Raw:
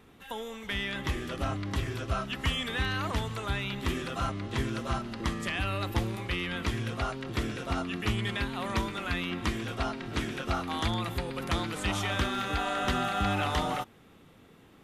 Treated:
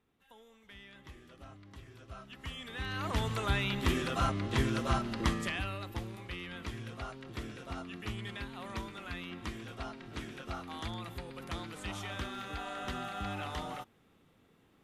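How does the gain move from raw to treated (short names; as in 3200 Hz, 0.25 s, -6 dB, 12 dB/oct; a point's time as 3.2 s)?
1.84 s -20 dB
2.72 s -11 dB
3.28 s +1 dB
5.3 s +1 dB
5.85 s -10 dB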